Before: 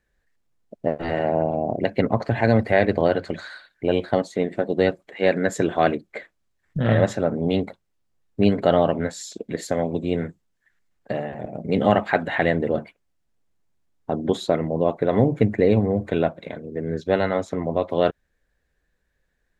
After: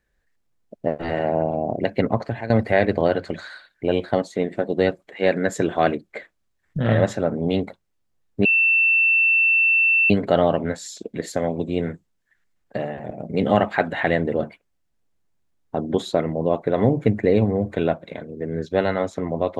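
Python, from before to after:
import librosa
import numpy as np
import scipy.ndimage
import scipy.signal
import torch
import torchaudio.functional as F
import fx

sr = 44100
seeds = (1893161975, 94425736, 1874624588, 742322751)

y = fx.edit(x, sr, fx.fade_out_to(start_s=2.14, length_s=0.36, floor_db=-16.5),
    fx.insert_tone(at_s=8.45, length_s=1.65, hz=2680.0, db=-14.0), tone=tone)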